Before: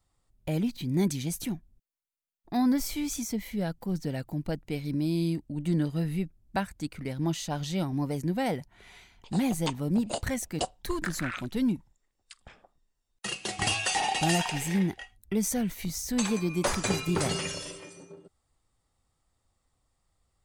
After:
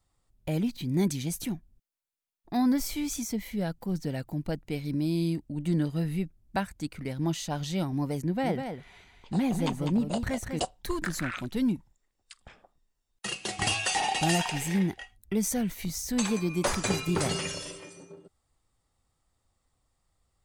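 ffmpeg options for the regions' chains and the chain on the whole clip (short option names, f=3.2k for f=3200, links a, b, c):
-filter_complex "[0:a]asettb=1/sr,asplit=3[a][b][c];[a]atrim=end=8.224[d];[b]atrim=start=8.22:end=10.6,asetpts=PTS-STARTPTS,afade=t=in:d=0.004:c=qsin,afade=t=out:st=2.376:d=0.004:c=qsin,highshelf=f=4.4k:g=-8.5,aecho=1:1:199:0.447,atrim=end_sample=104958[e];[c]atrim=start=10.596[f];[d][e]acrossfade=d=0.004:c1=hsin:c2=qsin[g];[g][f]acrossfade=d=0.004:c1=qsin:c2=hsin"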